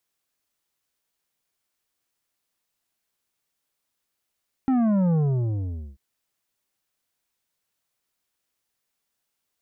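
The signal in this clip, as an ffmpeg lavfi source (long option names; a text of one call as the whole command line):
ffmpeg -f lavfi -i "aevalsrc='0.112*clip((1.29-t)/0.83,0,1)*tanh(2.82*sin(2*PI*270*1.29/log(65/270)*(exp(log(65/270)*t/1.29)-1)))/tanh(2.82)':duration=1.29:sample_rate=44100" out.wav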